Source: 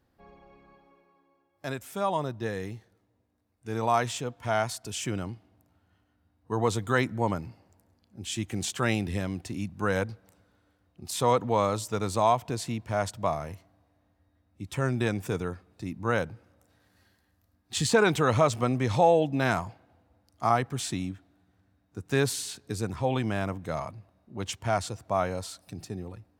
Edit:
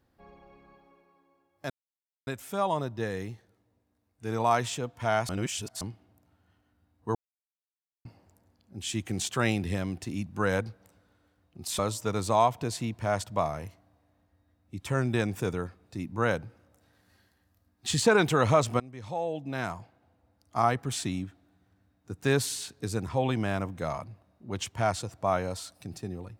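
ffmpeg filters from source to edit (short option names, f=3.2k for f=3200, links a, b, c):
-filter_complex "[0:a]asplit=8[a][b][c][d][e][f][g][h];[a]atrim=end=1.7,asetpts=PTS-STARTPTS,afade=t=out:st=1.696:d=0.004:c=hsin,apad=pad_dur=0.57[i];[b]atrim=start=1.7:end=4.722,asetpts=PTS-STARTPTS,afade=t=in:d=0.004:c=hsin[j];[c]atrim=start=4.718:end=5.242,asetpts=PTS-STARTPTS,areverse[k];[d]atrim=start=5.238:end=6.58,asetpts=PTS-STARTPTS,afade=t=out:st=1.338:d=0.004:c=hsin[l];[e]atrim=start=6.58:end=7.48,asetpts=PTS-STARTPTS,volume=0[m];[f]atrim=start=7.48:end=11.222,asetpts=PTS-STARTPTS,afade=t=in:d=0.004:c=hsin[n];[g]atrim=start=11.658:end=18.67,asetpts=PTS-STARTPTS,afade=t=out:st=7.008:d=0.004:c=hsin:silence=0.0794328[o];[h]atrim=start=18.67,asetpts=PTS-STARTPTS,afade=t=in:d=2.03:silence=0.0794328[p];[i][j]concat=n=2:v=0:a=1[q];[q][k]acrossfade=d=0.004:c1=hsin:c2=hsin[r];[l][m][n]concat=n=3:v=0:a=1[s];[r][s]acrossfade=d=0.004:c1=hsin:c2=hsin[t];[o][p]concat=n=2:v=0:a=1[u];[t][u]acrossfade=d=0.004:c1=hsin:c2=hsin"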